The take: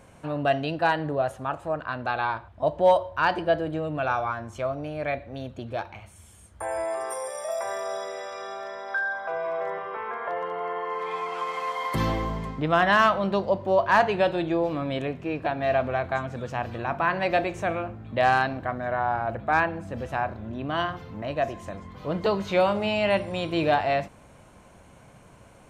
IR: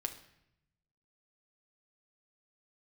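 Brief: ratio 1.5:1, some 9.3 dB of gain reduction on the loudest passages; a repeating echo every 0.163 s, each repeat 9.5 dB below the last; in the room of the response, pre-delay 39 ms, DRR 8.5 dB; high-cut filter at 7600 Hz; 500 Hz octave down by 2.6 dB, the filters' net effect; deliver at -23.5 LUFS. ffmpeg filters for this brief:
-filter_complex "[0:a]lowpass=7.6k,equalizer=f=500:t=o:g=-3.5,acompressor=threshold=-43dB:ratio=1.5,aecho=1:1:163|326|489|652:0.335|0.111|0.0365|0.012,asplit=2[a][b];[1:a]atrim=start_sample=2205,adelay=39[c];[b][c]afir=irnorm=-1:irlink=0,volume=-8.5dB[d];[a][d]amix=inputs=2:normalize=0,volume=11dB"

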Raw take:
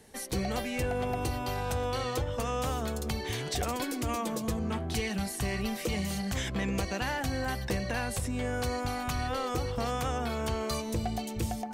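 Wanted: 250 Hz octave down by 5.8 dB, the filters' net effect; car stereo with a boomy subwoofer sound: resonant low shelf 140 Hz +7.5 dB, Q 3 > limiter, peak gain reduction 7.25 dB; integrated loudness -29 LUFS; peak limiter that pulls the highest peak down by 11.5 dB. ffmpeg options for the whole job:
-af "equalizer=f=250:t=o:g=-3.5,alimiter=level_in=10dB:limit=-24dB:level=0:latency=1,volume=-10dB,lowshelf=f=140:t=q:w=3:g=7.5,volume=10.5dB,alimiter=limit=-19.5dB:level=0:latency=1"

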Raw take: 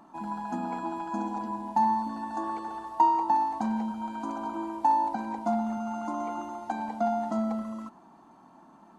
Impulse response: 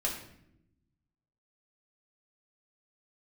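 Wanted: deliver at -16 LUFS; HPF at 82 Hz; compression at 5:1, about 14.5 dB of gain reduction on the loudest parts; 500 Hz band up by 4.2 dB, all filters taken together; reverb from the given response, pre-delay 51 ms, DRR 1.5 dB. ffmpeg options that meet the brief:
-filter_complex "[0:a]highpass=82,equalizer=f=500:t=o:g=7.5,acompressor=threshold=-34dB:ratio=5,asplit=2[a][b];[1:a]atrim=start_sample=2205,adelay=51[c];[b][c]afir=irnorm=-1:irlink=0,volume=-6.5dB[d];[a][d]amix=inputs=2:normalize=0,volume=19dB"

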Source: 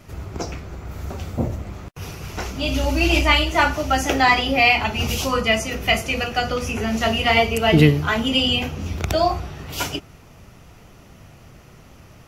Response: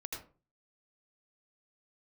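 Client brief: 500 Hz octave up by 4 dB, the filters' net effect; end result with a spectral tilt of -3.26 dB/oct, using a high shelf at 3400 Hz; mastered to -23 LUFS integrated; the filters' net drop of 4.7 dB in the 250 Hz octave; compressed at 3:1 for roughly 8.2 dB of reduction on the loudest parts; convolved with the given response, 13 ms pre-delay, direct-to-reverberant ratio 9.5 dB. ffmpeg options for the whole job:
-filter_complex "[0:a]equalizer=f=250:t=o:g=-9,equalizer=f=500:t=o:g=7.5,highshelf=f=3.4k:g=-5,acompressor=threshold=-22dB:ratio=3,asplit=2[a][b];[1:a]atrim=start_sample=2205,adelay=13[c];[b][c]afir=irnorm=-1:irlink=0,volume=-8.5dB[d];[a][d]amix=inputs=2:normalize=0,volume=2dB"

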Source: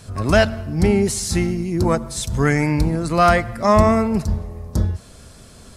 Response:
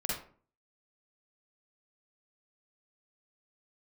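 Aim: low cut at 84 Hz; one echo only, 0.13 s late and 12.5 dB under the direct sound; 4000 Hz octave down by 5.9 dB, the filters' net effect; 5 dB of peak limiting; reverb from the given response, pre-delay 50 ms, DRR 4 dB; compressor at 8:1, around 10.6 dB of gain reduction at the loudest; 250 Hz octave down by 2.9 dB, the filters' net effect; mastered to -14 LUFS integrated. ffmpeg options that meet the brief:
-filter_complex "[0:a]highpass=84,equalizer=f=250:t=o:g=-4,equalizer=f=4k:t=o:g=-8.5,acompressor=threshold=-21dB:ratio=8,alimiter=limit=-17dB:level=0:latency=1,aecho=1:1:130:0.237,asplit=2[a][b];[1:a]atrim=start_sample=2205,adelay=50[c];[b][c]afir=irnorm=-1:irlink=0,volume=-8.5dB[d];[a][d]amix=inputs=2:normalize=0,volume=11.5dB"

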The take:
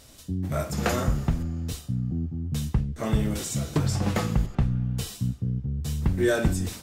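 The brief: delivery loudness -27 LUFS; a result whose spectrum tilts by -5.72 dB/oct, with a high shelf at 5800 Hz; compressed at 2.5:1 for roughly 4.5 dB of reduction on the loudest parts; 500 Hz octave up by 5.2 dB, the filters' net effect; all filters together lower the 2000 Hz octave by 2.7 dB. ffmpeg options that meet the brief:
-af "equalizer=f=500:t=o:g=7,equalizer=f=2k:t=o:g=-5,highshelf=f=5.8k:g=7,acompressor=threshold=-23dB:ratio=2.5,volume=1.5dB"

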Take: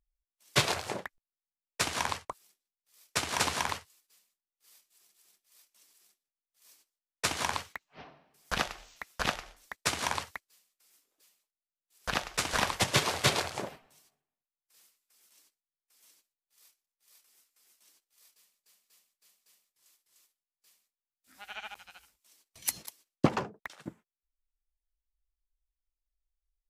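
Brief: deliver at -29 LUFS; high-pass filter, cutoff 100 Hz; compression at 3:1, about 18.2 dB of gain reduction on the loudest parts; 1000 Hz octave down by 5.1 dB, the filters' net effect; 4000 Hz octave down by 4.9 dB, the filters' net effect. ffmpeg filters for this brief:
-af "highpass=100,equalizer=f=1k:t=o:g=-6,equalizer=f=4k:t=o:g=-6,acompressor=threshold=-47dB:ratio=3,volume=20dB"

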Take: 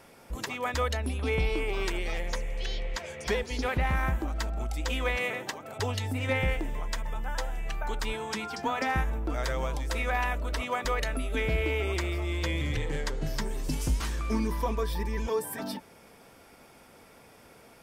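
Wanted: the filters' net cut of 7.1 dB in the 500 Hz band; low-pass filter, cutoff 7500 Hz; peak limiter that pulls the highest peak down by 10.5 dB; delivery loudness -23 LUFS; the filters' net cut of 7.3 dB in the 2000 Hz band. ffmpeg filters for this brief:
-af "lowpass=7.5k,equalizer=f=500:t=o:g=-8,equalizer=f=2k:t=o:g=-8.5,volume=16dB,alimiter=limit=-13.5dB:level=0:latency=1"

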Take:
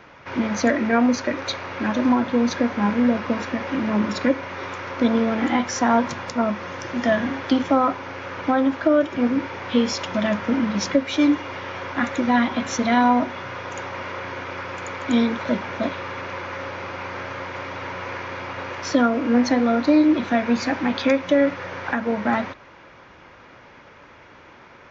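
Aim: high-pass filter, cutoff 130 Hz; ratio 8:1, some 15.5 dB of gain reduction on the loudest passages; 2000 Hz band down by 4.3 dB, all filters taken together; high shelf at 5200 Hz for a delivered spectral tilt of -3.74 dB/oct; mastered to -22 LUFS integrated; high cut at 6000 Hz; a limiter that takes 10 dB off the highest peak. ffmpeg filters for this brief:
-af "highpass=130,lowpass=6k,equalizer=f=2k:t=o:g=-4.5,highshelf=f=5.2k:g=-7,acompressor=threshold=-30dB:ratio=8,volume=14.5dB,alimiter=limit=-13dB:level=0:latency=1"

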